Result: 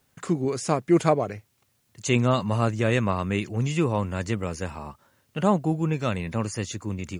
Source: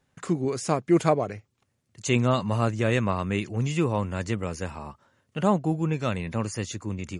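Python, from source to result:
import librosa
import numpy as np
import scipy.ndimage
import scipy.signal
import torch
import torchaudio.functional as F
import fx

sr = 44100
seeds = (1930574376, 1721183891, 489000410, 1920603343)

y = fx.quant_dither(x, sr, seeds[0], bits=12, dither='triangular')
y = F.gain(torch.from_numpy(y), 1.0).numpy()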